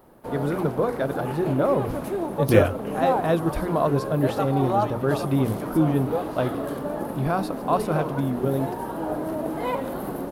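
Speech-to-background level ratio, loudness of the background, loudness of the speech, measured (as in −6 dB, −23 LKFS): 4.5 dB, −29.5 LKFS, −25.0 LKFS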